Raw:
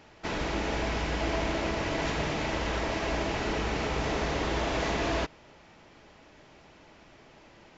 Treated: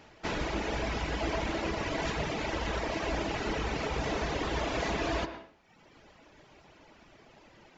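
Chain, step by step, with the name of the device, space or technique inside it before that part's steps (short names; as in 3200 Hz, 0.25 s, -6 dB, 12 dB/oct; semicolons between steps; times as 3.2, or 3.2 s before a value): reverb removal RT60 1.1 s; filtered reverb send (on a send: HPF 180 Hz 6 dB/oct + LPF 3700 Hz + reverb RT60 0.55 s, pre-delay 0.101 s, DRR 9.5 dB)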